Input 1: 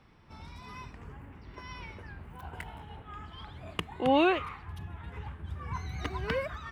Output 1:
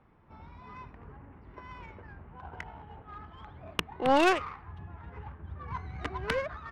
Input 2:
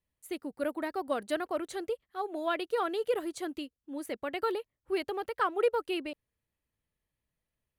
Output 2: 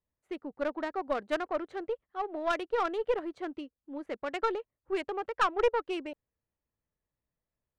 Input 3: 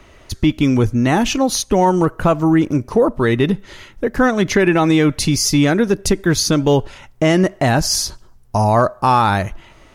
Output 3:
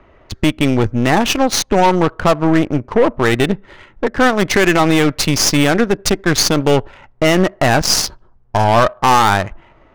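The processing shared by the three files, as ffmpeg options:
-af "lowshelf=f=470:g=-7.5,adynamicsmooth=sensitivity=3:basefreq=1.3k,aeval=exprs='0.631*(cos(1*acos(clip(val(0)/0.631,-1,1)))-cos(1*PI/2))+0.2*(cos(5*acos(clip(val(0)/0.631,-1,1)))-cos(5*PI/2))+0.112*(cos(7*acos(clip(val(0)/0.631,-1,1)))-cos(7*PI/2))+0.0794*(cos(8*acos(clip(val(0)/0.631,-1,1)))-cos(8*PI/2))':c=same,volume=1.5dB"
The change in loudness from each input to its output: +2.5, +1.0, +1.5 LU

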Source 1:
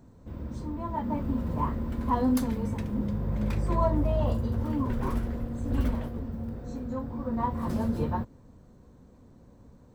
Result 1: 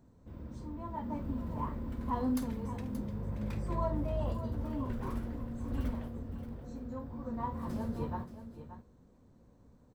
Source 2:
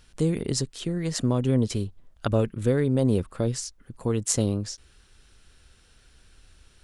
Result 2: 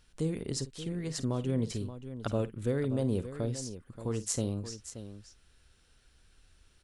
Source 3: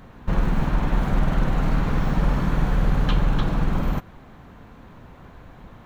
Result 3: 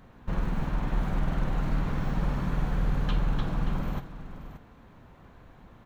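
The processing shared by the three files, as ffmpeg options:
-af "aecho=1:1:51|578:0.188|0.251,volume=-8dB"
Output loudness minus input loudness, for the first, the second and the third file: -7.5, -8.0, -7.0 LU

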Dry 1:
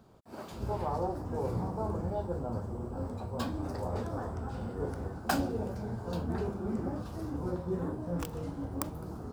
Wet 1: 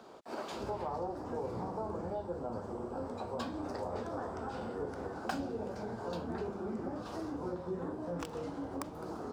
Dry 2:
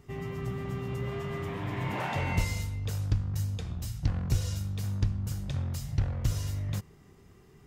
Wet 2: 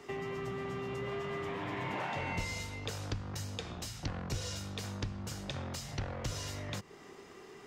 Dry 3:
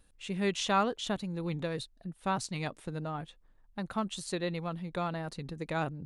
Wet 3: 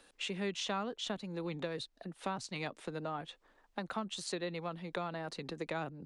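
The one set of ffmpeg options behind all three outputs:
-filter_complex "[0:a]acrossover=split=180[a][b];[b]acompressor=threshold=-47dB:ratio=5[c];[a][c]amix=inputs=2:normalize=0,acrossover=split=280 7800:gain=0.0708 1 0.224[d][e][f];[d][e][f]amix=inputs=3:normalize=0,volume=10.5dB"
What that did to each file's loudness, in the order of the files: -4.0, -6.5, -5.0 LU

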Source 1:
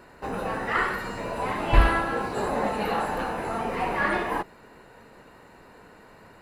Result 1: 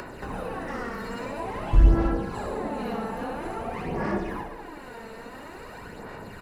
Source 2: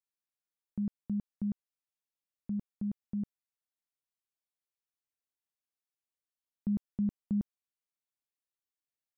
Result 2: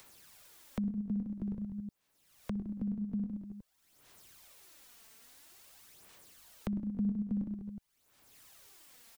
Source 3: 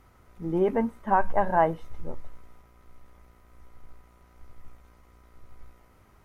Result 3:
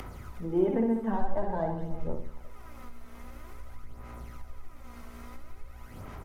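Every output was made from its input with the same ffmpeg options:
-filter_complex "[0:a]acrossover=split=270|1300[a][b][c];[c]volume=32.5dB,asoftclip=hard,volume=-32.5dB[d];[a][b][d]amix=inputs=3:normalize=0,acrossover=split=480[e][f];[f]acompressor=threshold=-34dB:ratio=10[g];[e][g]amix=inputs=2:normalize=0,asplit=2[h][i];[i]aecho=0:1:60|126|198.6|278.5|366.3:0.631|0.398|0.251|0.158|0.1[j];[h][j]amix=inputs=2:normalize=0,aphaser=in_gain=1:out_gain=1:delay=4.5:decay=0.49:speed=0.49:type=sinusoidal,asoftclip=type=tanh:threshold=-0.5dB,acompressor=mode=upward:threshold=-27dB:ratio=2.5,volume=-3.5dB"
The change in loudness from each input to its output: -2.0, -1.0, -5.0 LU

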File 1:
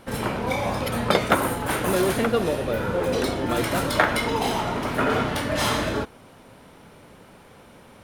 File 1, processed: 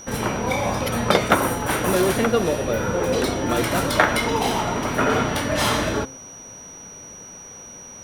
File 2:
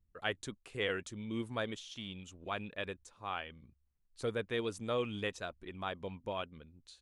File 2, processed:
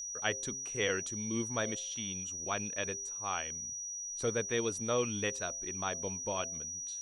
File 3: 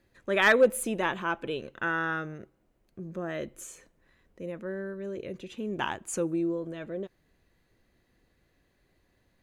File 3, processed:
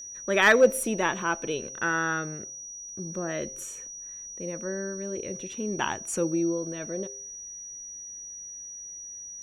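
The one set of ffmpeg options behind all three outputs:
-af "bandreject=f=132.7:t=h:w=4,bandreject=f=265.4:t=h:w=4,bandreject=f=398.1:t=h:w=4,bandreject=f=530.8:t=h:w=4,bandreject=f=663.5:t=h:w=4,aeval=exprs='val(0)+0.00891*sin(2*PI*5800*n/s)':c=same,volume=2.5dB"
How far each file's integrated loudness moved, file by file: +2.5, +5.0, +1.0 LU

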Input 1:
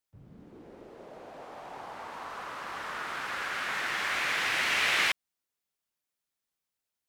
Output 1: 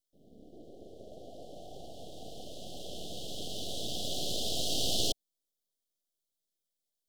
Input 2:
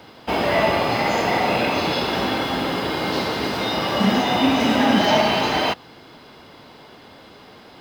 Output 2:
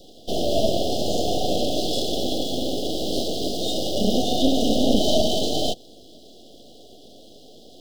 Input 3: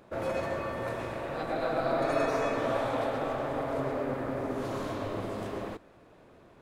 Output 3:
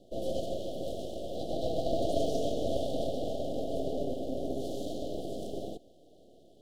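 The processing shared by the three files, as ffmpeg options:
-af "highpass=f=210:w=0.5412,highpass=f=210:w=1.3066,aeval=exprs='max(val(0),0)':c=same,asuperstop=centerf=1500:order=20:qfactor=0.65,volume=4dB"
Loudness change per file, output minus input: -5.5, -3.5, -3.0 LU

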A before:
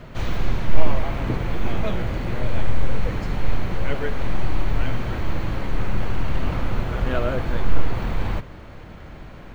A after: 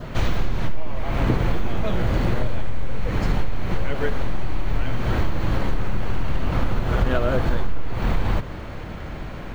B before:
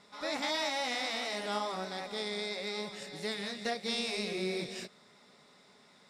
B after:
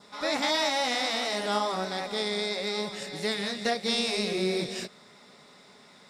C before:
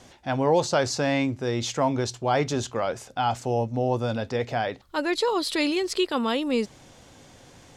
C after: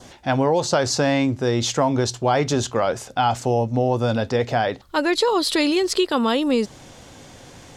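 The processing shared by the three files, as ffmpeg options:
-af "acompressor=threshold=-21dB:ratio=16,adynamicequalizer=threshold=0.00316:dfrequency=2300:dqfactor=3:tfrequency=2300:tqfactor=3:attack=5:release=100:ratio=0.375:range=2:mode=cutabove:tftype=bell,volume=7dB"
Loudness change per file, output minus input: +1.0, +6.5, +5.0 LU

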